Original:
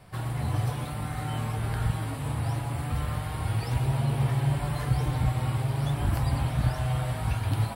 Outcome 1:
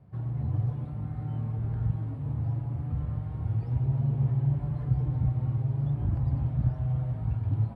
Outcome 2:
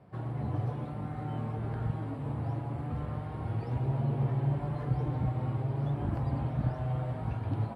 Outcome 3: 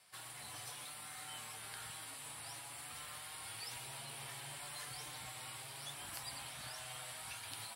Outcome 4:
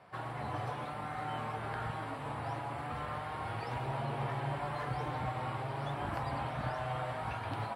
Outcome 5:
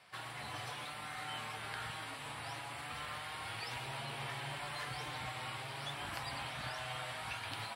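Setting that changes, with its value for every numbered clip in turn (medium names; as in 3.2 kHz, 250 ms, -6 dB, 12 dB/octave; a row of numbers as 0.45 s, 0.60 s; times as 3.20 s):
band-pass filter, frequency: 120 Hz, 300 Hz, 7.7 kHz, 950 Hz, 3 kHz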